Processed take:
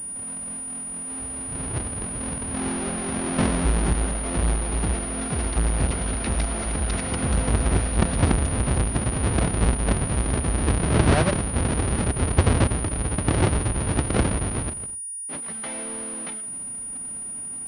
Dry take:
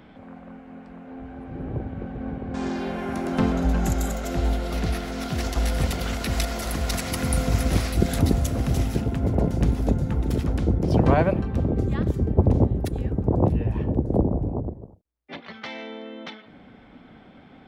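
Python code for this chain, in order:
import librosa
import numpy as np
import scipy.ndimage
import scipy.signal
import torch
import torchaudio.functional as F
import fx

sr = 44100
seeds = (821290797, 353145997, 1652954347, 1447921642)

y = fx.halfwave_hold(x, sr)
y = fx.pwm(y, sr, carrier_hz=9600.0)
y = y * librosa.db_to_amplitude(-4.5)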